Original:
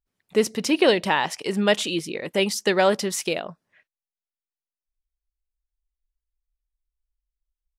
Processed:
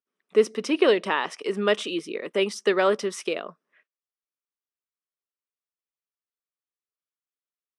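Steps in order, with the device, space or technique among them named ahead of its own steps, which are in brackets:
television speaker (loudspeaker in its box 210–8,800 Hz, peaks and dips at 420 Hz +6 dB, 810 Hz −5 dB, 1,200 Hz +8 dB, 4,400 Hz −7 dB, 7,100 Hz −9 dB)
level −3.5 dB

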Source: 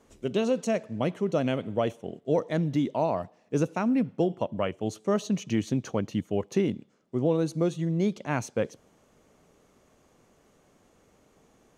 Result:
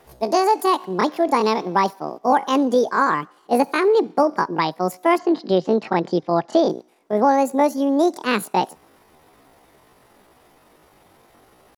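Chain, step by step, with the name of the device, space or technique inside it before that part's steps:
chipmunk voice (pitch shifter +9 semitones)
0:05.17–0:06.68: low-pass filter 3,900 Hz → 6,500 Hz 24 dB per octave
level +8.5 dB

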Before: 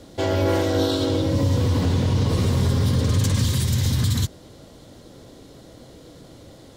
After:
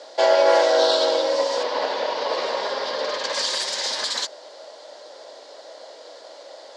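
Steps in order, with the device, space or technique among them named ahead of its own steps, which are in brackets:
0:01.63–0:03.33: low-pass filter 4,100 Hz 12 dB per octave
phone speaker on a table (loudspeaker in its box 500–7,400 Hz, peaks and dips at 600 Hz +10 dB, 900 Hz +7 dB, 1,700 Hz +5 dB, 4,700 Hz +8 dB)
level +3.5 dB

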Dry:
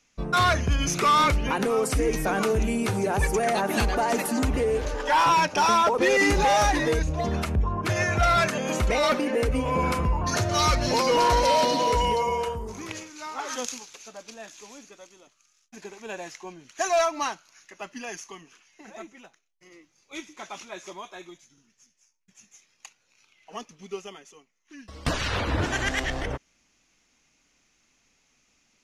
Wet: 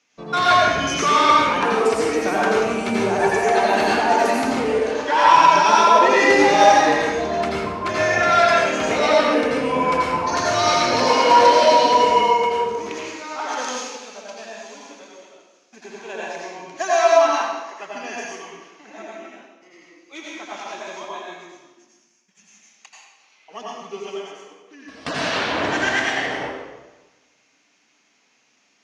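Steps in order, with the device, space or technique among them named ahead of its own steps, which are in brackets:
supermarket ceiling speaker (band-pass filter 260–5,800 Hz; convolution reverb RT60 1.2 s, pre-delay 78 ms, DRR −5 dB)
level +1 dB

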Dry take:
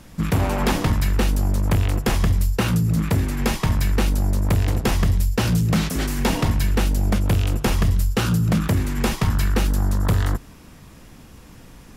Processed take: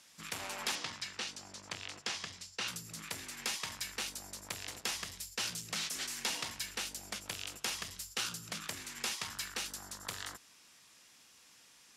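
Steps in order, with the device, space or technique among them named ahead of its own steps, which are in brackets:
piezo pickup straight into a mixer (low-pass filter 6,300 Hz 12 dB per octave; first difference)
0:00.75–0:02.68: Chebyshev band-pass filter 100–5,500 Hz, order 2

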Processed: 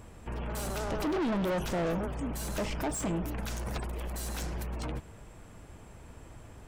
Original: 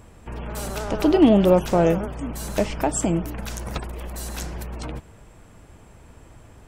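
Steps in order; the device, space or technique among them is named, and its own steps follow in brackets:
saturation between pre-emphasis and de-emphasis (high-shelf EQ 4,200 Hz +7.5 dB; soft clipping −26 dBFS, distortion −3 dB; high-shelf EQ 4,200 Hz −7.5 dB)
level −2 dB

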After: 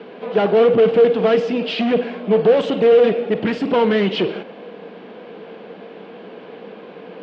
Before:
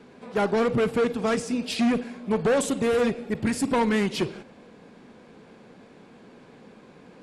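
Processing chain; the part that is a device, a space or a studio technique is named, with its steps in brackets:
overdrive pedal into a guitar cabinet (mid-hump overdrive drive 18 dB, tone 2,300 Hz, clips at −15.5 dBFS; loudspeaker in its box 100–4,500 Hz, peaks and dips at 190 Hz +9 dB, 320 Hz +5 dB, 460 Hz +10 dB, 670 Hz +6 dB, 3,000 Hz +8 dB)

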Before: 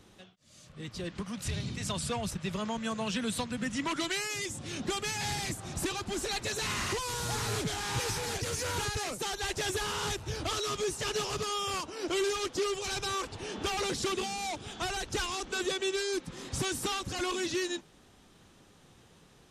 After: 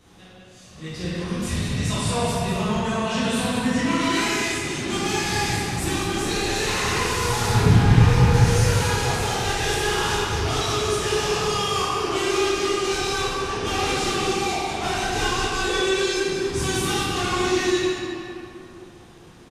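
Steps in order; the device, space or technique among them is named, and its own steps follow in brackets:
0:07.49–0:08.34: bass and treble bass +14 dB, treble −10 dB
cave (single-tap delay 197 ms −8 dB; convolution reverb RT60 2.8 s, pre-delay 9 ms, DRR −11 dB)
level −1 dB

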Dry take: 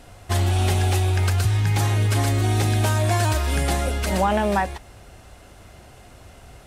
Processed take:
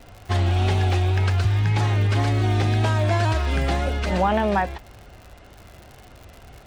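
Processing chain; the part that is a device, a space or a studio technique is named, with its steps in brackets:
lo-fi chain (low-pass filter 4,200 Hz 12 dB per octave; tape wow and flutter; surface crackle 94 per second −34 dBFS)

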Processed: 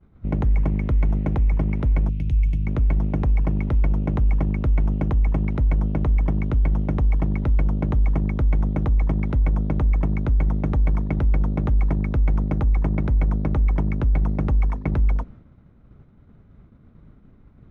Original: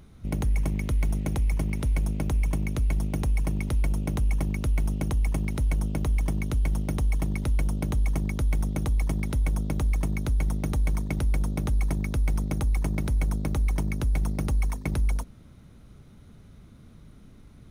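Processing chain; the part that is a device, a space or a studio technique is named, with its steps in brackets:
hearing-loss simulation (low-pass filter 1,700 Hz 12 dB per octave; downward expander −43 dBFS)
0:02.09–0:02.67: drawn EQ curve 110 Hz 0 dB, 1,200 Hz −28 dB, 2,600 Hz +2 dB
level +5.5 dB

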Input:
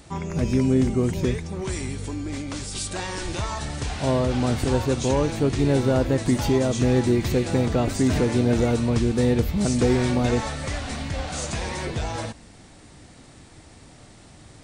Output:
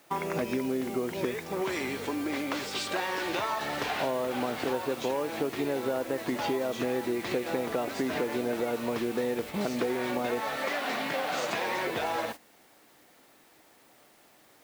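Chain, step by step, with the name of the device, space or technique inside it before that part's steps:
baby monitor (band-pass filter 400–3,100 Hz; downward compressor 8 to 1, threshold −34 dBFS, peak gain reduction 14 dB; white noise bed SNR 18 dB; noise gate −45 dBFS, range −14 dB)
0:10.56–0:11.70: high-pass filter 200 Hz → 91 Hz 24 dB per octave
level +7 dB

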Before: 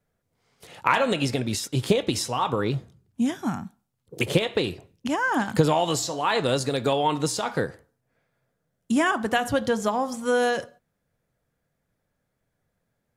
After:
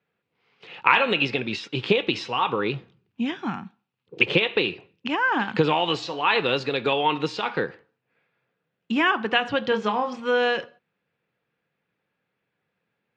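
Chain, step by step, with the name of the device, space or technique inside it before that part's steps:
kitchen radio (loudspeaker in its box 210–4,000 Hz, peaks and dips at 260 Hz −5 dB, 630 Hz −9 dB, 2,600 Hz +9 dB)
0:09.69–0:10.20: double-tracking delay 28 ms −6.5 dB
level +2.5 dB

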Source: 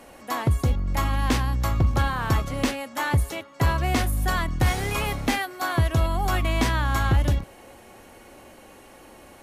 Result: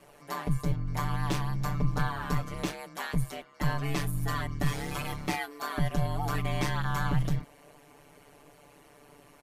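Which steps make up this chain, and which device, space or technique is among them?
ring-modulated robot voice (ring modulation 72 Hz; comb filter 6.9 ms, depth 97%)
level −8 dB

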